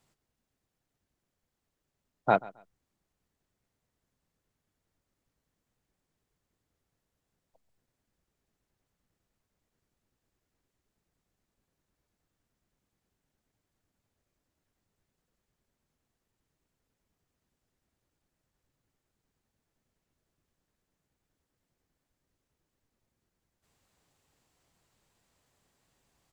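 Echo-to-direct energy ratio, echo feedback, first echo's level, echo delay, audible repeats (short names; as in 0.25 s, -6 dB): -21.5 dB, 22%, -21.5 dB, 0.134 s, 2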